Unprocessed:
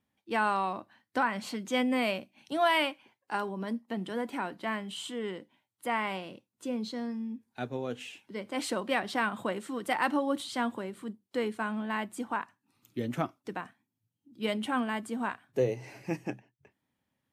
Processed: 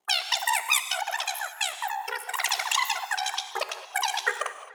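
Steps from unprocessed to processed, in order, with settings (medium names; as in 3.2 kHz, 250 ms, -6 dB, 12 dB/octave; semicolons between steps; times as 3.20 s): vibrato 1.3 Hz 11 cents; wide varispeed 3.65×; ring modulator 33 Hz; tape echo 217 ms, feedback 76%, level -19.5 dB, low-pass 3.1 kHz; gated-style reverb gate 240 ms flat, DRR 9 dB; trim +7 dB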